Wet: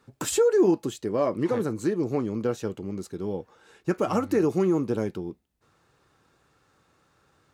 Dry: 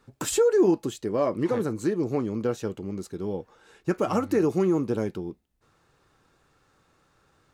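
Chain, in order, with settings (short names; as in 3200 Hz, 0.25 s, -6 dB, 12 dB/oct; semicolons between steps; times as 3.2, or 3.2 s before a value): HPF 53 Hz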